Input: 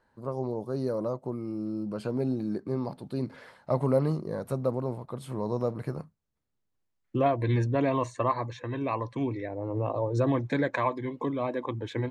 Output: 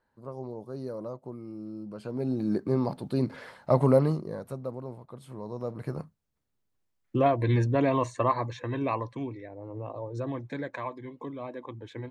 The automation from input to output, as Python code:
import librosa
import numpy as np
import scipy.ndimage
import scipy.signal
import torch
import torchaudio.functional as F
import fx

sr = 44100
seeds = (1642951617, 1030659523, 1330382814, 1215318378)

y = fx.gain(x, sr, db=fx.line((2.01, -6.5), (2.53, 4.5), (3.9, 4.5), (4.61, -7.5), (5.54, -7.5), (6.0, 1.5), (8.89, 1.5), (9.4, -8.0)))